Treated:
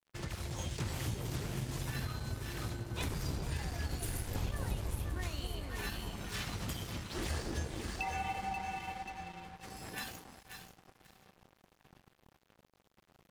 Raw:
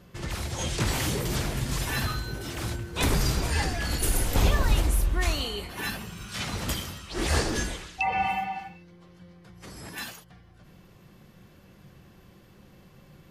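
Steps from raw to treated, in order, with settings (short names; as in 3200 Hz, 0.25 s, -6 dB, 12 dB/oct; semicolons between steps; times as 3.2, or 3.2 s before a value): dynamic EQ 100 Hz, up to +8 dB, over -40 dBFS, Q 0.87; on a send: echo with dull and thin repeats by turns 0.267 s, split 900 Hz, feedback 55%, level -2.5 dB; on the sum: compressor 3:1, threshold -34 dBFS, peak gain reduction 17 dB; low shelf 150 Hz -3 dB; darkening echo 0.631 s, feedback 75%, low-pass 3300 Hz, level -16 dB; crossover distortion -47 dBFS; gain -1.5 dB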